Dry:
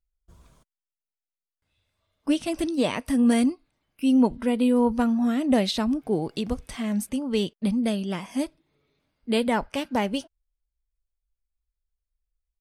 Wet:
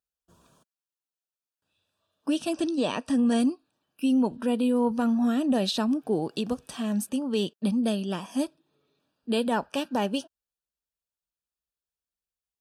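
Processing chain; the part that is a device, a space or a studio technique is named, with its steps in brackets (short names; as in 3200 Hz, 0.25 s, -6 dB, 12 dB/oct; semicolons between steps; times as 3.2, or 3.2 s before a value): PA system with an anti-feedback notch (HPF 160 Hz 12 dB/oct; Butterworth band-stop 2100 Hz, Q 4; limiter -17 dBFS, peak gain reduction 6.5 dB); 2.54–3.4 LPF 8400 Hz 24 dB/oct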